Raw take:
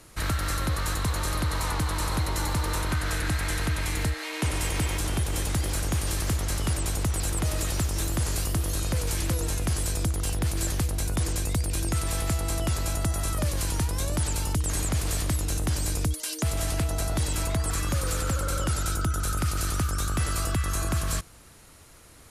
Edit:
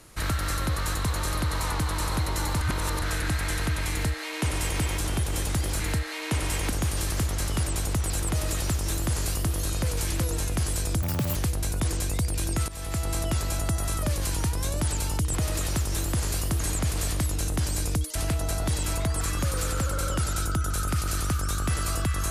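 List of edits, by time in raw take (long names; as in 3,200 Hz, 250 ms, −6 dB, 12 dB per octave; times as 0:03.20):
0:02.61–0:03.02: reverse
0:03.91–0:04.81: duplicate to 0:05.80
0:07.37–0:08.63: duplicate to 0:14.69
0:10.12–0:10.71: play speed 177%
0:12.04–0:12.43: fade in, from −14.5 dB
0:16.25–0:16.65: remove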